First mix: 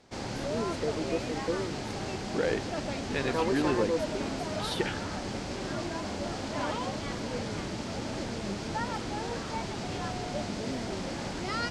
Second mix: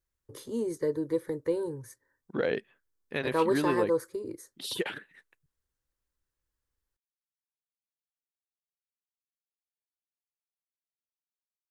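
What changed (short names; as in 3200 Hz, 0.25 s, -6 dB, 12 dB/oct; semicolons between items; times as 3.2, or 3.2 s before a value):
first voice +3.5 dB; background: muted; master: remove LPF 8200 Hz 12 dB/oct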